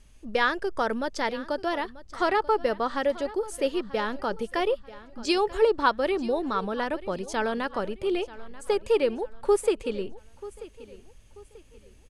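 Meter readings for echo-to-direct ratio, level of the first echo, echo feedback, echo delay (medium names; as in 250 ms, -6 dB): -17.5 dB, -18.0 dB, 35%, 937 ms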